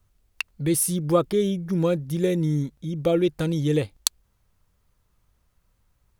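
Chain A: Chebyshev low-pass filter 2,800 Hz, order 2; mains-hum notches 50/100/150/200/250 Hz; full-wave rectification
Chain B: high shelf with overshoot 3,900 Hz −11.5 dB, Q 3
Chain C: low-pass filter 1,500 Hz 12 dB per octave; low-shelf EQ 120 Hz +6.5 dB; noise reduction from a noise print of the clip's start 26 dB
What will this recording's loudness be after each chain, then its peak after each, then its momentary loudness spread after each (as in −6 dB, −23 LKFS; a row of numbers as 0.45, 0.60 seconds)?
−31.5, −24.5, −23.5 LKFS; −8.5, −6.5, −8.5 dBFS; 9, 6, 5 LU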